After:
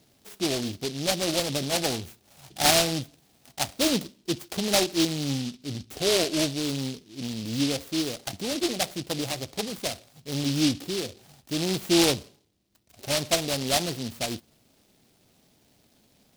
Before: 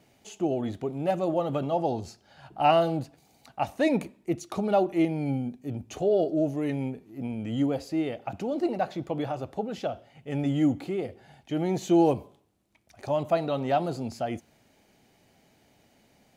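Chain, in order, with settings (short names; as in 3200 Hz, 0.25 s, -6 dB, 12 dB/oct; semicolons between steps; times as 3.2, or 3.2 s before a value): noise-modulated delay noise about 3900 Hz, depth 0.23 ms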